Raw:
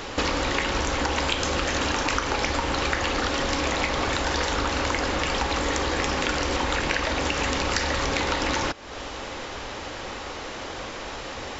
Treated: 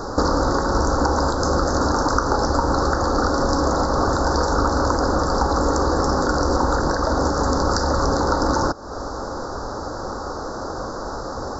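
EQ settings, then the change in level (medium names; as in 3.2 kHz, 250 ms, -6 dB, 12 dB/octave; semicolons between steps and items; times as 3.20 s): elliptic band-stop 1.4–4.7 kHz, stop band 60 dB; treble shelf 5.5 kHz -10 dB; +8.0 dB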